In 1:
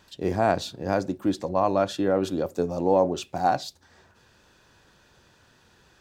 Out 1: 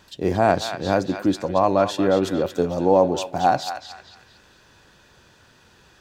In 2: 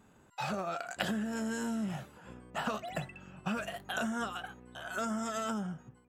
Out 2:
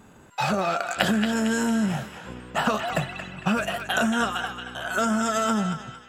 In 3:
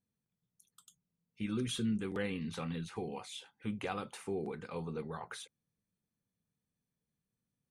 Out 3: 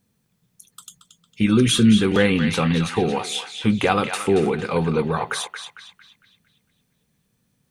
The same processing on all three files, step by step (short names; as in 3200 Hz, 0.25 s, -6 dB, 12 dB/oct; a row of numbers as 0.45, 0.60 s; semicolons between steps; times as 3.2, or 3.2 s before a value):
narrowing echo 0.227 s, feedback 48%, band-pass 2600 Hz, level -5.5 dB; normalise peaks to -3 dBFS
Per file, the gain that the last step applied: +4.5, +11.0, +19.0 dB